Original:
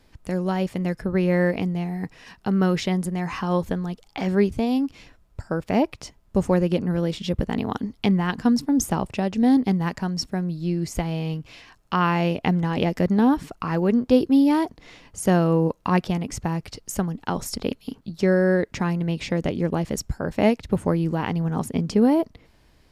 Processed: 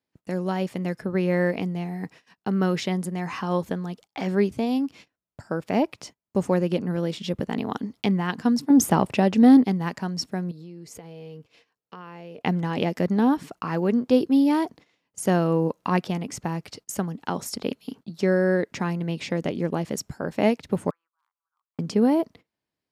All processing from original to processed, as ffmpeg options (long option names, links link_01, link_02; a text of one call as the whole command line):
ffmpeg -i in.wav -filter_complex "[0:a]asettb=1/sr,asplit=3[link_01][link_02][link_03];[link_01]atrim=end=8.704[link_04];[link_02]atrim=start=8.7:end=9.64,asetpts=PTS-STARTPTS,afade=type=in:duration=0.004:curve=qsin,afade=type=out:start_time=0.936:duration=0.004:curve=qsin,equalizer=frequency=6700:width=0.93:gain=-4,acontrast=83[link_05];[link_03]atrim=start=9.636[link_06];[link_04][link_05]acrossfade=duration=0.004:curve1=hsin:curve2=qsin[link_07];[link_07][link_06]acrossfade=duration=0.004:curve1=qsin:curve2=hsin,asettb=1/sr,asplit=3[link_08][link_09][link_10];[link_08]atrim=end=10.514[link_11];[link_09]atrim=start=10.51:end=12.41,asetpts=PTS-STARTPTS,afade=type=in:duration=0.004:curve=qsin,afade=type=out:start_time=1.896:duration=0.004:curve=qsin,acompressor=threshold=-36dB:ratio=10:attack=3.2:release=140:knee=1:detection=peak,equalizer=frequency=460:width_type=o:width=0.24:gain=13[link_12];[link_10]atrim=start=12.406[link_13];[link_11][link_12]acrossfade=duration=0.004:curve1=hsin:curve2=qsin[link_14];[link_14][link_13]acrossfade=duration=0.004:curve1=qsin:curve2=hsin,asettb=1/sr,asplit=3[link_15][link_16][link_17];[link_15]atrim=end=20.904[link_18];[link_16]atrim=start=20.9:end=21.79,asetpts=PTS-STARTPTS,afade=type=in:duration=0.004:curve=qsin,afade=type=out:start_time=0.886:duration=0.004:curve=qsin,asuperpass=centerf=1200:order=4:qfactor=2.9,aeval=exprs='clip(val(0),-1,0.0398)':channel_layout=same,aderivative[link_19];[link_17]atrim=start=21.786[link_20];[link_18][link_19]acrossfade=duration=0.004:curve1=hsin:curve2=qsin[link_21];[link_21][link_20]acrossfade=duration=0.004:curve1=qsin:curve2=hsin,agate=range=-24dB:threshold=-42dB:ratio=16:detection=peak,highpass=150,volume=-1.5dB" out.wav